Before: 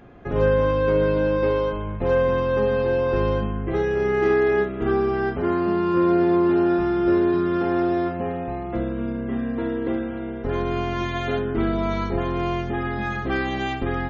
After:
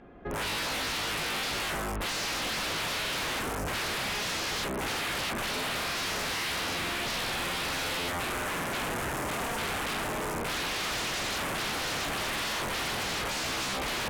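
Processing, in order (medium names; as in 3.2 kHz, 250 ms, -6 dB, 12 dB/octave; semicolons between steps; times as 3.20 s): peaking EQ 110 Hz -11.5 dB 0.52 oct; level rider gain up to 13.5 dB; integer overflow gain 15.5 dB; distance through air 110 m; Chebyshev shaper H 3 -13 dB, 7 -17 dB, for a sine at -6.5 dBFS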